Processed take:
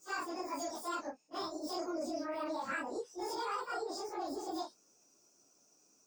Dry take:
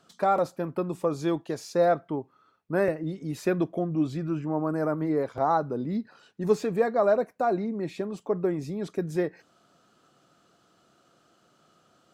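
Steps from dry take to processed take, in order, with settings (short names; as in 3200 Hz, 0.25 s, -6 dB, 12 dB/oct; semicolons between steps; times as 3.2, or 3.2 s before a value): phase scrambler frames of 0.2 s; EQ curve 110 Hz 0 dB, 1500 Hz -19 dB, 2800 Hz +13 dB, 6200 Hz -12 dB, 9100 Hz +8 dB; limiter -27.5 dBFS, peak gain reduction 8 dB; dynamic EQ 1000 Hz, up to +5 dB, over -51 dBFS, Q 0.81; speed mistake 7.5 ips tape played at 15 ips; gain -3.5 dB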